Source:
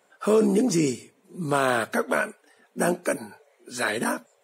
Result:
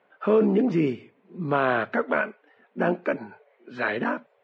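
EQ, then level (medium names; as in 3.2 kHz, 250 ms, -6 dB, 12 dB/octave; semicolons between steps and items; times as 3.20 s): low-pass 2.9 kHz 24 dB/octave; 0.0 dB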